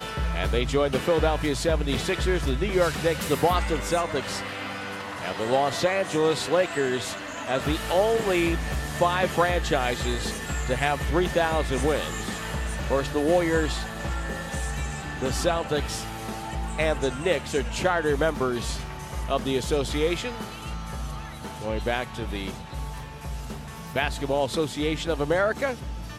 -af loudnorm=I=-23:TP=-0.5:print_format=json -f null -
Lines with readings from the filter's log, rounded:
"input_i" : "-26.4",
"input_tp" : "-9.3",
"input_lra" : "4.2",
"input_thresh" : "-36.5",